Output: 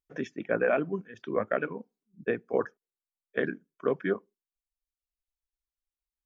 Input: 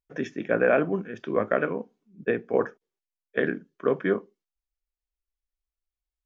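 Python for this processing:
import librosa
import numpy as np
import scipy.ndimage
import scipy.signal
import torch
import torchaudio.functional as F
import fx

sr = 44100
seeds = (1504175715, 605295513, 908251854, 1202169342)

y = fx.dereverb_blind(x, sr, rt60_s=1.1)
y = F.gain(torch.from_numpy(y), -3.5).numpy()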